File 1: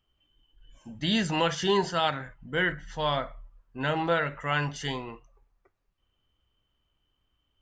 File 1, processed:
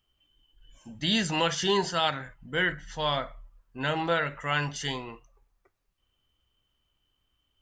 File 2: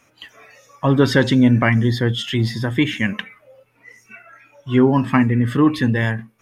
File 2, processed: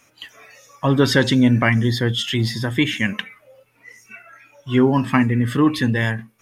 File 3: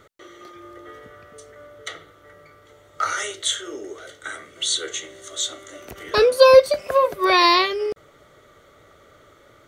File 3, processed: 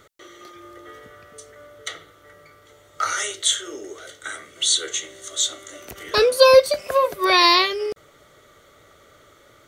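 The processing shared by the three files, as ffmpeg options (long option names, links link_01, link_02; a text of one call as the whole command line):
ffmpeg -i in.wav -af "highshelf=frequency=2900:gain=7,volume=-1.5dB" out.wav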